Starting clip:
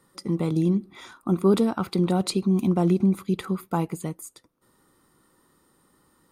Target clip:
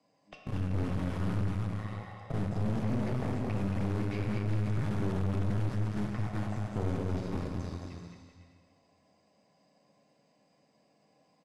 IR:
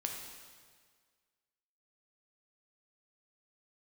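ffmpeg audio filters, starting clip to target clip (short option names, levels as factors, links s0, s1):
-filter_complex "[0:a]acrossover=split=800|3900[s0][s1][s2];[s0]acompressor=threshold=0.0708:ratio=4[s3];[s1]acompressor=threshold=0.0112:ratio=4[s4];[s2]acompressor=threshold=0.00398:ratio=4[s5];[s3][s4][s5]amix=inputs=3:normalize=0,acrossover=split=290|640|4600[s6][s7][s8][s9];[s6]acrusher=bits=5:mix=0:aa=0.000001[s10];[s10][s7][s8][s9]amix=inputs=4:normalize=0,asetrate=24343,aresample=44100,aecho=1:1:220|385|508.8|601.6|671.2:0.631|0.398|0.251|0.158|0.1[s11];[1:a]atrim=start_sample=2205[s12];[s11][s12]afir=irnorm=-1:irlink=0,aeval=exprs='(tanh(25.1*val(0)+0.75)-tanh(0.75))/25.1':c=same,highshelf=f=3300:g=-12"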